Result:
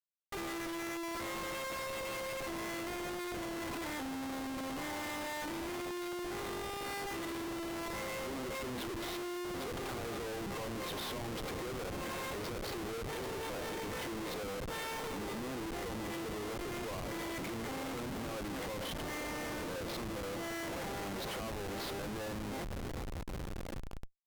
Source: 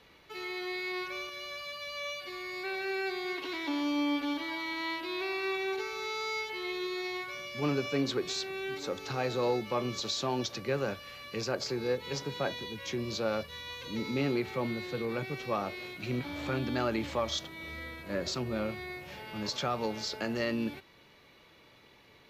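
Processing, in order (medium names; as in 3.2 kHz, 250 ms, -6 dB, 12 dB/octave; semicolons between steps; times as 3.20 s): peak limiter -30.5 dBFS, peak gain reduction 11.5 dB; high-pass 440 Hz 12 dB/octave; peaking EQ 11 kHz -14.5 dB 1.9 oct; echo that smears into a reverb 1213 ms, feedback 52%, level -14.5 dB; compression 6:1, threshold -46 dBFS, peak gain reduction 9.5 dB; Schmitt trigger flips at -50 dBFS; speed mistake 48 kHz file played as 44.1 kHz; trim +10 dB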